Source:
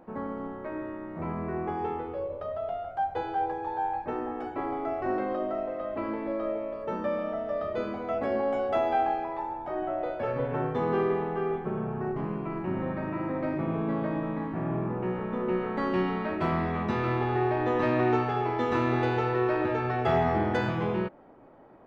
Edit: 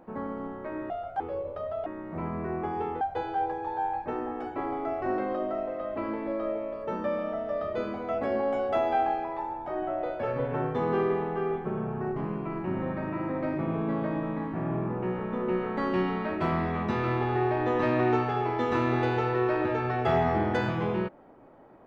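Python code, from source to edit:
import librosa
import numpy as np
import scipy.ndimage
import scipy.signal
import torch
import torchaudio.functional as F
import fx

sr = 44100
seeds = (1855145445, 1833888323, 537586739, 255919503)

y = fx.edit(x, sr, fx.swap(start_s=0.9, length_s=1.15, other_s=2.71, other_length_s=0.3), tone=tone)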